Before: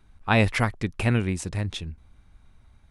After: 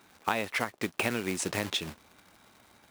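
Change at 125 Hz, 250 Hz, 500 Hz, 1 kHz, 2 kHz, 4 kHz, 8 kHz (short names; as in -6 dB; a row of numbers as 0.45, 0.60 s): -17.0, -8.0, -5.0, -4.5, -4.5, +0.5, +3.0 dB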